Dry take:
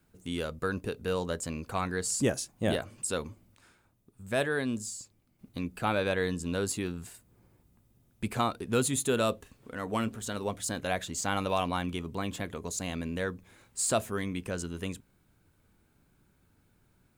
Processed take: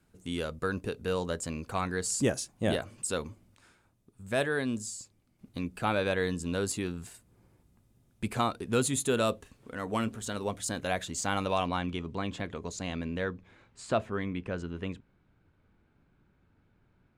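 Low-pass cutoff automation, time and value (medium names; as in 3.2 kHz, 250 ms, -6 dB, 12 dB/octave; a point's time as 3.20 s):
11.27 s 12 kHz
11.87 s 5.2 kHz
12.87 s 5.2 kHz
13.90 s 2.8 kHz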